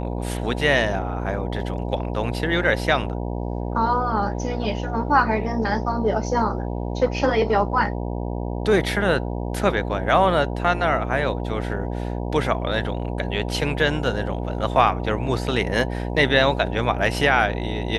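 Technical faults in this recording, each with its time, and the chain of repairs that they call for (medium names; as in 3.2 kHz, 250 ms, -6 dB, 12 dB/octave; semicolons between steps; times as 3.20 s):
buzz 60 Hz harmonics 16 -27 dBFS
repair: de-hum 60 Hz, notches 16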